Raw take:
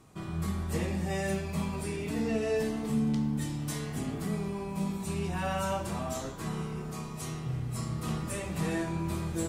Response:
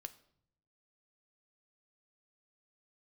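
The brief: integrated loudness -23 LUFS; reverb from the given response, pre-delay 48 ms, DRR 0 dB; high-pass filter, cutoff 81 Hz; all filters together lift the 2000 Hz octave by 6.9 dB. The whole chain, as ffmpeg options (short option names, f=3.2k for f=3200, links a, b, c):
-filter_complex "[0:a]highpass=81,equalizer=f=2k:t=o:g=8.5,asplit=2[a][b];[1:a]atrim=start_sample=2205,adelay=48[c];[b][c]afir=irnorm=-1:irlink=0,volume=5dB[d];[a][d]amix=inputs=2:normalize=0,volume=6dB"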